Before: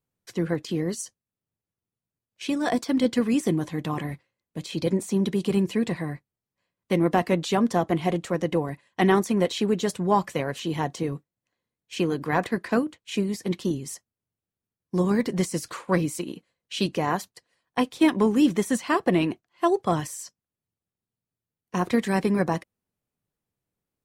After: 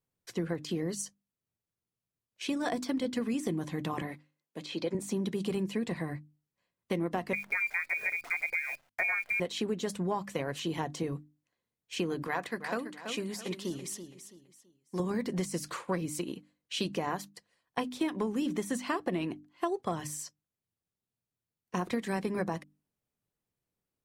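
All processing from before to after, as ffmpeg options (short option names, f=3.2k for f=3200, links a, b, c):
-filter_complex "[0:a]asettb=1/sr,asplit=3[a][b][c];[a]atrim=end=4.024[d];[b]atrim=start=4.02:end=4.95,asetpts=PTS-STARTPTS,afade=t=in:d=0.004:c=qsin,afade=t=out:st=0.926:d=0.004:c=qsin,highpass=270,acrossover=split=5300[e][f];[f]acompressor=threshold=-59dB:ratio=4:attack=1:release=60[g];[e][g]amix=inputs=2:normalize=0[h];[c]atrim=start=4.946[i];[d][h]acrossfade=d=0.004:c1=hsin:c2=qsin[j];[j][i]acrossfade=d=0.004:c1=qsin:c2=hsin,asettb=1/sr,asplit=3[k][l][m];[k]atrim=end=7.334[n];[l]atrim=start=7.33:end=9.4,asetpts=PTS-STARTPTS,afade=t=in:d=0.004:c=qsin,afade=t=out:st=2.066:d=0.004:c=qsin,lowpass=f=2.2k:t=q:w=0.5098,lowpass=f=2.2k:t=q:w=0.6013,lowpass=f=2.2k:t=q:w=0.9,lowpass=f=2.2k:t=q:w=2.563,afreqshift=-2600,acrusher=bits=8:dc=4:mix=0:aa=0.000001[o];[m]atrim=start=9.396[p];[n][o]acrossfade=d=0.004:c1=hsin:c2=qsin[q];[q][p]acrossfade=d=0.004:c1=qsin:c2=hsin,asettb=1/sr,asplit=3[r][s][t];[r]atrim=end=12.274[u];[s]atrim=start=12.27:end=15,asetpts=PTS-STARTPTS,afade=t=in:d=0.004:c=qsin,afade=t=out:st=2.726:d=0.004:c=qsin,lowshelf=f=420:g=-10,aecho=1:1:331|662|993:0.282|0.0902|0.0289,atrim=end_sample=120393[v];[t]atrim=start=14.996[w];[u][v]acrossfade=d=0.004:c1=hsin:c2=qsin[x];[x][w]acrossfade=d=0.004:c1=qsin:c2=hsin,bandreject=f=50:t=h:w=6,bandreject=f=100:t=h:w=6,bandreject=f=150:t=h:w=6,bandreject=f=200:t=h:w=6,bandreject=f=250:t=h:w=6,bandreject=f=300:t=h:w=6,acompressor=threshold=-26dB:ratio=6,volume=-2.5dB"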